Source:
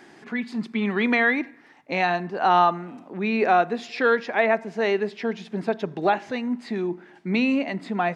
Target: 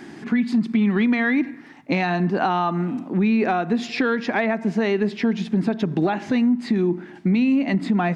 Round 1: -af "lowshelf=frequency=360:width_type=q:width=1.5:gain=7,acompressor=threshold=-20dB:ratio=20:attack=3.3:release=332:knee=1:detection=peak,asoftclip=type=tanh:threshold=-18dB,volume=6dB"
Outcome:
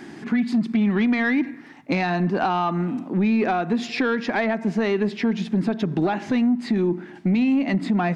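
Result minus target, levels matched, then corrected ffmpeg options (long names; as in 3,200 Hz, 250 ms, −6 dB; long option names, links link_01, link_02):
soft clipping: distortion +14 dB
-af "lowshelf=frequency=360:width_type=q:width=1.5:gain=7,acompressor=threshold=-20dB:ratio=20:attack=3.3:release=332:knee=1:detection=peak,asoftclip=type=tanh:threshold=-10dB,volume=6dB"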